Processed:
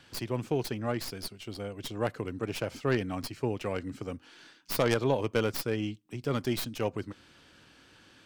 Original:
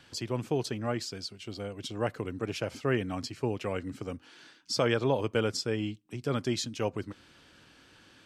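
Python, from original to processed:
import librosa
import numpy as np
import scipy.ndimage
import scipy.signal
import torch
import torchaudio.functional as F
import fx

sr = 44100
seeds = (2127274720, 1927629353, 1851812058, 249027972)

y = fx.tracing_dist(x, sr, depth_ms=0.2)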